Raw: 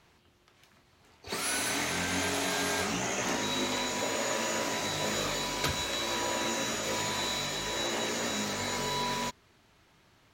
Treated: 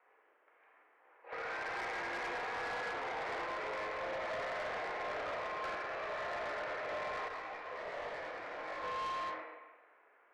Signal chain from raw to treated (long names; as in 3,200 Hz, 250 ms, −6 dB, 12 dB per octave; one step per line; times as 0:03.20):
four-comb reverb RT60 1.2 s, combs from 33 ms, DRR −2 dB
single-sideband voice off tune +75 Hz 350–2,100 Hz
soft clipping −31.5 dBFS, distortion −11 dB
0:07.28–0:08.84: micro pitch shift up and down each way 46 cents
level −4 dB